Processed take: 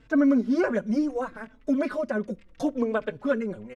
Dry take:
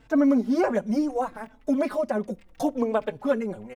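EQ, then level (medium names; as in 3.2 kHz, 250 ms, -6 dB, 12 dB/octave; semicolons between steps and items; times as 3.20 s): peaking EQ 800 Hz -10 dB 0.45 oct; dynamic bell 1.5 kHz, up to +6 dB, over -51 dBFS, Q 6.1; distance through air 53 m; 0.0 dB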